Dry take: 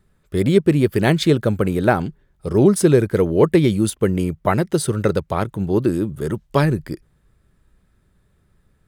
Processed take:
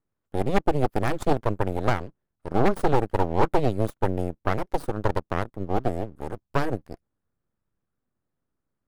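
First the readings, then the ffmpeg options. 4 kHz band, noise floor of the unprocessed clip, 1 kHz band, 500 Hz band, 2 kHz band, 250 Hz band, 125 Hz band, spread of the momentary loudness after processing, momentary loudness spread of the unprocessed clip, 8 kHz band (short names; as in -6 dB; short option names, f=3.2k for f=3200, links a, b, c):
-11.5 dB, -62 dBFS, -0.5 dB, -8.5 dB, -6.5 dB, -11.0 dB, -9.0 dB, 10 LU, 9 LU, -17.5 dB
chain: -af "highpass=f=48:p=1,aeval=exprs='0.891*(cos(1*acos(clip(val(0)/0.891,-1,1)))-cos(1*PI/2))+0.224*(cos(3*acos(clip(val(0)/0.891,-1,1)))-cos(3*PI/2))+0.224*(cos(6*acos(clip(val(0)/0.891,-1,1)))-cos(6*PI/2))':c=same,highshelf=f=1.6k:t=q:w=1.5:g=-7,aeval=exprs='abs(val(0))':c=same,volume=-6dB"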